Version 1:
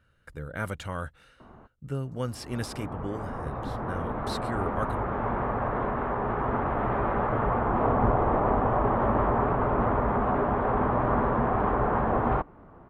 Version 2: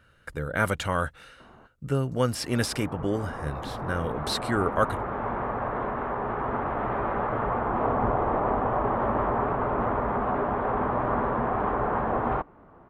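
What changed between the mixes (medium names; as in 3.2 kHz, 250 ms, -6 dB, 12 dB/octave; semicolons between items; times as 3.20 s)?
speech +9.0 dB; master: add bass shelf 220 Hz -5.5 dB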